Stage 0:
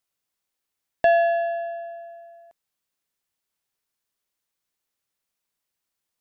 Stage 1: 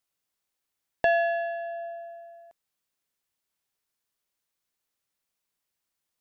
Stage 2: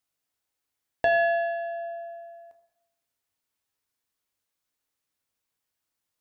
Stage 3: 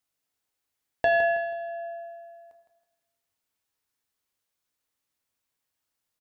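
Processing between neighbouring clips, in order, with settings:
dynamic EQ 660 Hz, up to -5 dB, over -32 dBFS; gain -1 dB
reverb RT60 0.90 s, pre-delay 5 ms, DRR 5 dB; gain -1 dB
feedback echo 0.161 s, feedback 35%, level -9.5 dB

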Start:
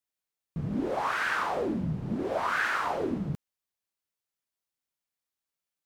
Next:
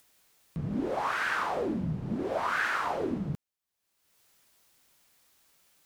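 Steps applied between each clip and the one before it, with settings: upward compressor, threshold -44 dBFS; gain -1 dB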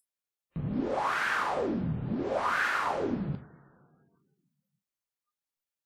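two-slope reverb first 0.58 s, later 2.9 s, from -20 dB, DRR 7.5 dB; spectral noise reduction 29 dB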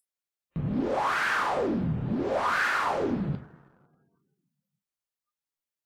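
sample leveller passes 1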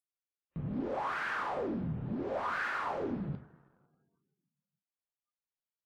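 high shelf 4400 Hz -11.5 dB; gain -7.5 dB

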